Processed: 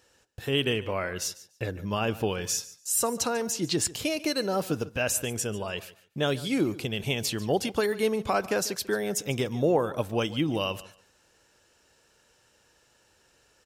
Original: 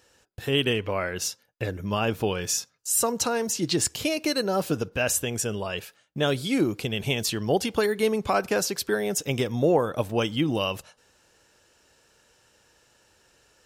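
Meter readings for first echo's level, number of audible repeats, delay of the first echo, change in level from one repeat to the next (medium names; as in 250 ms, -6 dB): -18.0 dB, 2, 144 ms, -14.5 dB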